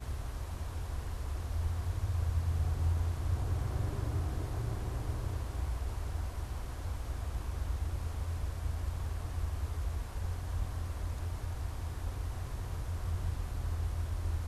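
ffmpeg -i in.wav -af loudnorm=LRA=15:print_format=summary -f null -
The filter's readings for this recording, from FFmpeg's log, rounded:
Input Integrated:    -37.6 LUFS
Input True Peak:     -21.3 dBTP
Input LRA:             4.0 LU
Input Threshold:     -47.6 LUFS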